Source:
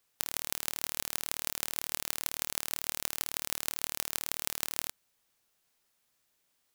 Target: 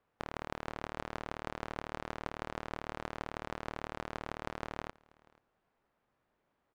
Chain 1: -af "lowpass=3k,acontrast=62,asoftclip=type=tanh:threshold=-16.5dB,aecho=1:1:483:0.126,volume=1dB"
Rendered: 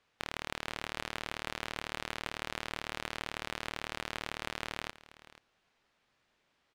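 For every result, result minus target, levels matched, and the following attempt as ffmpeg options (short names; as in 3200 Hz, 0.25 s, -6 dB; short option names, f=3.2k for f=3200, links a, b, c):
4000 Hz band +8.0 dB; echo-to-direct +7.5 dB
-af "lowpass=1.2k,acontrast=62,asoftclip=type=tanh:threshold=-16.5dB,aecho=1:1:483:0.126,volume=1dB"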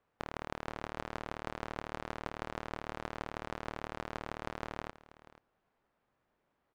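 echo-to-direct +7.5 dB
-af "lowpass=1.2k,acontrast=62,asoftclip=type=tanh:threshold=-16.5dB,aecho=1:1:483:0.0531,volume=1dB"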